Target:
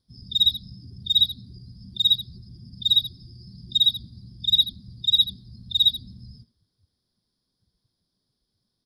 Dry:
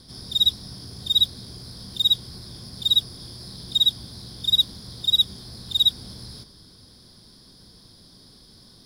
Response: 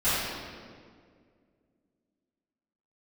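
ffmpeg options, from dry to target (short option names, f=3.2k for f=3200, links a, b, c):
-filter_complex "[0:a]afftdn=nr=28:nf=-33,asplit=2[a][b];[b]adelay=80,highpass=300,lowpass=3.4k,asoftclip=type=hard:threshold=-18.5dB,volume=-9dB[c];[a][c]amix=inputs=2:normalize=0"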